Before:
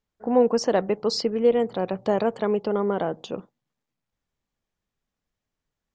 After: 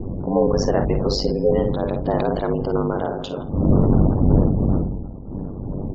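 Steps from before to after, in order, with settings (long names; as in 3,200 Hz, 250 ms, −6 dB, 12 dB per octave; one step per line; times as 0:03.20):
wind on the microphone 210 Hz −23 dBFS
in parallel at −2 dB: downward compressor 6 to 1, threshold −33 dBFS, peak gain reduction 20 dB
on the sum: tape wow and flutter 23 cents
comb and all-pass reverb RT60 3.5 s, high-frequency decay 0.6×, pre-delay 40 ms, DRR 14 dB
gate on every frequency bin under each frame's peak −30 dB strong
low-pass filter 5,800 Hz
on a send: multi-tap delay 49/58 ms −9.5/−11.5 dB
on the sum: ring modulation 48 Hz
level that may fall only so fast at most 41 dB per second
level +1.5 dB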